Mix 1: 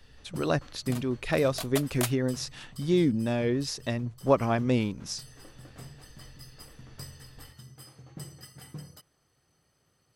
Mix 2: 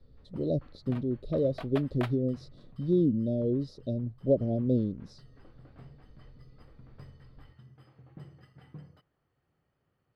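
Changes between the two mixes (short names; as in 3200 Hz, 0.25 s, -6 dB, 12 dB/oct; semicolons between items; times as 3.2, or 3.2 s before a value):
speech: add Chebyshev band-stop 600–3900 Hz, order 4; first sound -4.0 dB; master: add air absorption 430 m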